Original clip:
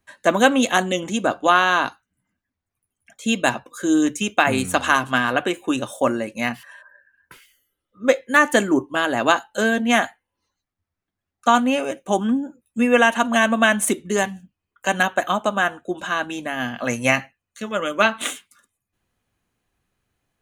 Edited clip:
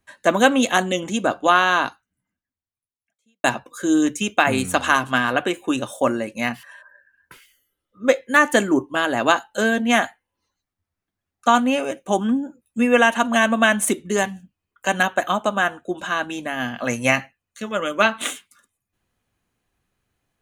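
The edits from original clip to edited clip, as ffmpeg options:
ffmpeg -i in.wav -filter_complex "[0:a]asplit=2[link_01][link_02];[link_01]atrim=end=3.44,asetpts=PTS-STARTPTS,afade=type=out:start_time=1.81:duration=1.63:curve=qua[link_03];[link_02]atrim=start=3.44,asetpts=PTS-STARTPTS,afade=type=in:duration=0.004:curve=hsin[link_04];[link_03][link_04]concat=n=2:v=0:a=1" out.wav

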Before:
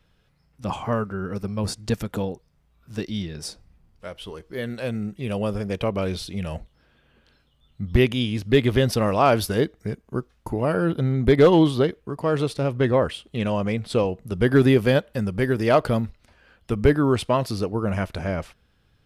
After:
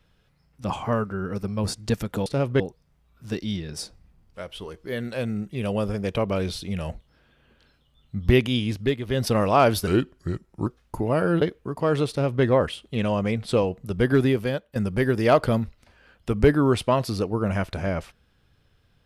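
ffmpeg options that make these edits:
ffmpeg -i in.wav -filter_complex "[0:a]asplit=9[link_01][link_02][link_03][link_04][link_05][link_06][link_07][link_08][link_09];[link_01]atrim=end=2.262[link_10];[link_02]atrim=start=12.508:end=12.852[link_11];[link_03]atrim=start=2.258:end=8.63,asetpts=PTS-STARTPTS,afade=type=out:start_time=6.132:duration=0.24:silence=0.281838[link_12];[link_04]atrim=start=8.63:end=8.72,asetpts=PTS-STARTPTS,volume=-11dB[link_13];[link_05]atrim=start=8.72:end=9.534,asetpts=PTS-STARTPTS,afade=type=in:duration=0.24:silence=0.281838[link_14];[link_06]atrim=start=9.53:end=10.19,asetpts=PTS-STARTPTS,asetrate=36603,aresample=44100,atrim=end_sample=35067,asetpts=PTS-STARTPTS[link_15];[link_07]atrim=start=10.186:end=10.942[link_16];[link_08]atrim=start=11.828:end=15.17,asetpts=PTS-STARTPTS,afade=type=out:start_time=2.412:duration=0.93:silence=0.211349[link_17];[link_09]atrim=start=15.17,asetpts=PTS-STARTPTS,afade=type=in:duration=0.004:curve=hsin:silence=0.211349[link_18];[link_10][link_11]acrossfade=duration=0.004:curve1=hsin:curve2=hsin[link_19];[link_12][link_13][link_14]concat=n=3:v=0:a=1[link_20];[link_19][link_20]acrossfade=duration=0.004:curve1=hsin:curve2=hsin[link_21];[link_21][link_15]acrossfade=duration=0.004:curve1=hsin:curve2=hsin[link_22];[link_22][link_16]acrossfade=duration=0.004:curve1=hsin:curve2=hsin[link_23];[link_17][link_18]concat=n=2:v=0:a=1[link_24];[link_23][link_24]acrossfade=duration=0.004:curve1=hsin:curve2=hsin" out.wav

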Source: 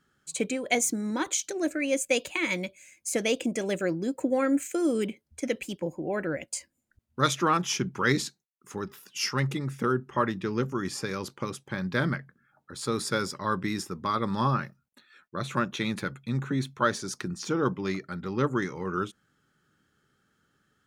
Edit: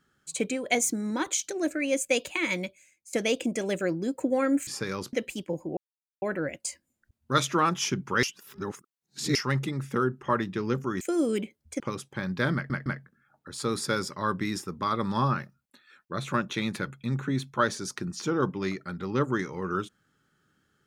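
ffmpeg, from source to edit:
ffmpeg -i in.wav -filter_complex "[0:a]asplit=11[link_01][link_02][link_03][link_04][link_05][link_06][link_07][link_08][link_09][link_10][link_11];[link_01]atrim=end=3.13,asetpts=PTS-STARTPTS,afade=type=out:start_time=2.65:duration=0.48:curve=qua:silence=0.141254[link_12];[link_02]atrim=start=3.13:end=4.672,asetpts=PTS-STARTPTS,afade=type=in:duration=0.004:curve=hsin:silence=0.141254[link_13];[link_03]atrim=start=10.888:end=11.352[link_14];[link_04]atrim=start=5.458:end=6.1,asetpts=PTS-STARTPTS,afade=type=out:start_time=0.638:duration=0.004:curve=hsin,apad=pad_dur=0.45[link_15];[link_05]atrim=start=6.1:end=8.112,asetpts=PTS-STARTPTS,afade=type=in:duration=0.004:curve=hsin[link_16];[link_06]atrim=start=8.108:end=9.232,asetpts=PTS-STARTPTS,areverse[link_17];[link_07]atrim=start=9.228:end=10.892[link_18];[link_08]atrim=start=4.668:end=5.462[link_19];[link_09]atrim=start=11.348:end=12.252[link_20];[link_10]atrim=start=12.088:end=12.252[link_21];[link_11]atrim=start=12.088[link_22];[link_12][link_13]concat=n=2:v=0:a=1[link_23];[link_23][link_14]acrossfade=duration=0.004:curve1=hsin:curve2=hsin[link_24];[link_15][link_16]concat=n=2:v=0:a=1[link_25];[link_24][link_25]acrossfade=duration=0.004:curve1=hsin:curve2=hsin[link_26];[link_26][link_17]acrossfade=duration=0.004:curve1=hsin:curve2=hsin[link_27];[link_27][link_18]acrossfade=duration=0.004:curve1=hsin:curve2=hsin[link_28];[link_28][link_19]acrossfade=duration=0.004:curve1=hsin:curve2=hsin[link_29];[link_29][link_20]acrossfade=duration=0.004:curve1=hsin:curve2=hsin[link_30];[link_30][link_21]acrossfade=duration=0.004:curve1=hsin:curve2=hsin[link_31];[link_31][link_22]acrossfade=duration=0.004:curve1=hsin:curve2=hsin" out.wav

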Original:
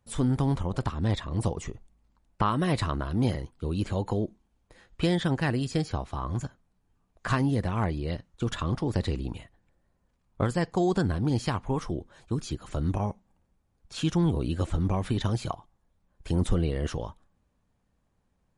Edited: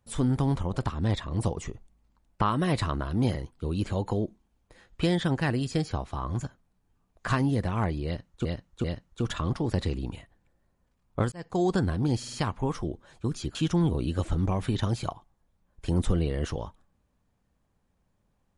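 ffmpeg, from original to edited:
ffmpeg -i in.wav -filter_complex "[0:a]asplit=8[link_01][link_02][link_03][link_04][link_05][link_06][link_07][link_08];[link_01]atrim=end=8.452[link_09];[link_02]atrim=start=8.058:end=8.452[link_10];[link_03]atrim=start=8.058:end=10.54,asetpts=PTS-STARTPTS,afade=type=out:start_time=2.478:duration=0.004:curve=hsin[link_11];[link_04]atrim=start=10.54:end=11.452,asetpts=PTS-STARTPTS,afade=type=in:duration=0.31[link_12];[link_05]atrim=start=11.398:end=11.452[link_13];[link_06]atrim=start=11.398:end=11.452[link_14];[link_07]atrim=start=11.398:end=12.622[link_15];[link_08]atrim=start=13.968[link_16];[link_09][link_10]acrossfade=duration=0.004:curve1=hsin:curve2=hsin[link_17];[link_11][link_12]concat=n=2:v=0:a=1[link_18];[link_17][link_18]acrossfade=duration=0.004:curve1=hsin:curve2=hsin[link_19];[link_19][link_13]acrossfade=duration=0.004:curve1=hsin:curve2=hsin[link_20];[link_20][link_14]acrossfade=duration=0.004:curve1=hsin:curve2=hsin[link_21];[link_21][link_15]acrossfade=duration=0.004:curve1=hsin:curve2=hsin[link_22];[link_22][link_16]acrossfade=duration=0.004:curve1=hsin:curve2=hsin" out.wav

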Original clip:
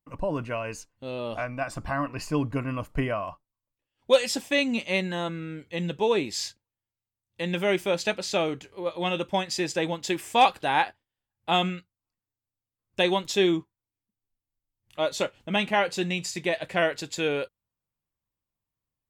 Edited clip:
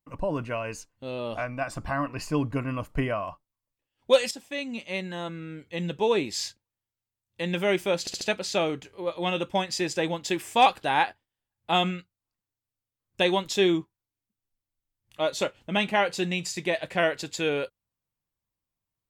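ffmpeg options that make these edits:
ffmpeg -i in.wav -filter_complex "[0:a]asplit=5[link_01][link_02][link_03][link_04][link_05];[link_01]atrim=end=4.31,asetpts=PTS-STARTPTS,afade=type=out:start_time=4.306:duration=0.004:curve=hsin:silence=0.237137[link_06];[link_02]atrim=start=4.31:end=8.072,asetpts=PTS-STARTPTS,afade=type=in:duration=1.76:silence=0.237137[link_07];[link_03]atrim=start=7.998:end=8.072[link_08];[link_04]atrim=start=7.998:end=8.072[link_09];[link_05]atrim=start=7.998[link_10];[link_06][link_07]concat=n=2:v=0:a=1[link_11];[link_11][link_08]acrossfade=duration=0.004:curve1=hsin:curve2=hsin[link_12];[link_12][link_09]acrossfade=duration=0.004:curve1=hsin:curve2=hsin[link_13];[link_13][link_10]acrossfade=duration=0.004:curve1=hsin:curve2=hsin" out.wav

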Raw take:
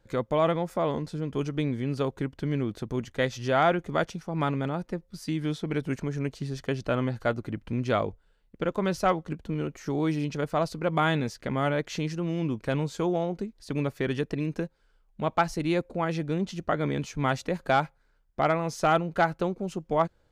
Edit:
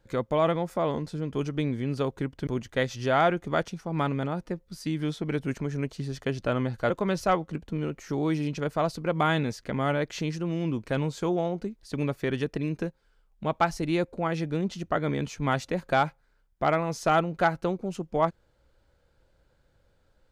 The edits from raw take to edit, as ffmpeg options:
ffmpeg -i in.wav -filter_complex "[0:a]asplit=3[link_01][link_02][link_03];[link_01]atrim=end=2.472[link_04];[link_02]atrim=start=2.888:end=7.322[link_05];[link_03]atrim=start=8.668[link_06];[link_04][link_05]acrossfade=duration=0.004:curve1=hsin:curve2=hsin[link_07];[link_07][link_06]acrossfade=duration=0.004:curve1=hsin:curve2=hsin" out.wav

